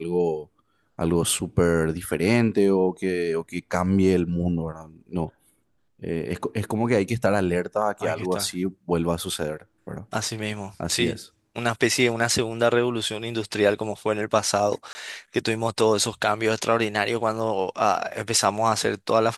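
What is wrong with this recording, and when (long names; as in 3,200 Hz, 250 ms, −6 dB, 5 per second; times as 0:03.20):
0:14.93–0:14.95: drop-out 20 ms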